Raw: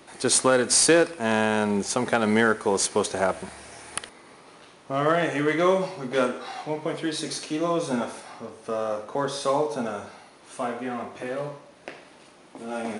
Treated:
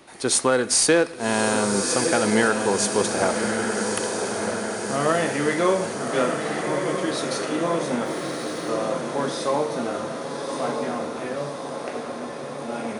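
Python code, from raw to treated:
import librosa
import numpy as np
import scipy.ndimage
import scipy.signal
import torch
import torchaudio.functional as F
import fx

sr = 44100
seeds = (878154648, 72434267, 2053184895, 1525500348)

y = fx.echo_diffused(x, sr, ms=1208, feedback_pct=64, wet_db=-4.5)
y = fx.sample_gate(y, sr, floor_db=-44.5, at=(8.05, 8.7))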